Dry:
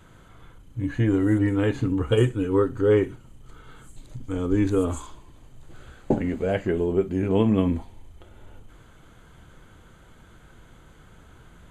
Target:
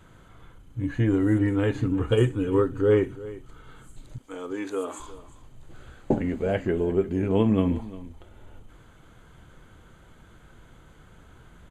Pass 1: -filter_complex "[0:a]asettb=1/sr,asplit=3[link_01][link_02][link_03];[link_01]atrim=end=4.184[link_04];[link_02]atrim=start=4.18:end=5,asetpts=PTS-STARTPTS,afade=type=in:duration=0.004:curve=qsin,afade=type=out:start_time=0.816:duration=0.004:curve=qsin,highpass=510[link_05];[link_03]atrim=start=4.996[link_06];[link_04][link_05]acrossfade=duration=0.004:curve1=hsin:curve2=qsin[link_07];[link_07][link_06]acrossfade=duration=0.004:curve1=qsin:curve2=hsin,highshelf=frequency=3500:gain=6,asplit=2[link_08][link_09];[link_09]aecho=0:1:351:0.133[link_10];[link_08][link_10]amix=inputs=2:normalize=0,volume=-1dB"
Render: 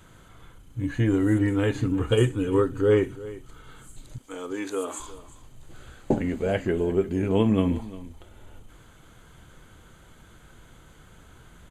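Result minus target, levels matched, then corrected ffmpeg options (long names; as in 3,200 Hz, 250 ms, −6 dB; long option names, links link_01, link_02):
8,000 Hz band +6.5 dB
-filter_complex "[0:a]asettb=1/sr,asplit=3[link_01][link_02][link_03];[link_01]atrim=end=4.184[link_04];[link_02]atrim=start=4.18:end=5,asetpts=PTS-STARTPTS,afade=type=in:duration=0.004:curve=qsin,afade=type=out:start_time=0.816:duration=0.004:curve=qsin,highpass=510[link_05];[link_03]atrim=start=4.996[link_06];[link_04][link_05]acrossfade=duration=0.004:curve1=hsin:curve2=qsin[link_07];[link_07][link_06]acrossfade=duration=0.004:curve1=qsin:curve2=hsin,highshelf=frequency=3500:gain=-2,asplit=2[link_08][link_09];[link_09]aecho=0:1:351:0.133[link_10];[link_08][link_10]amix=inputs=2:normalize=0,volume=-1dB"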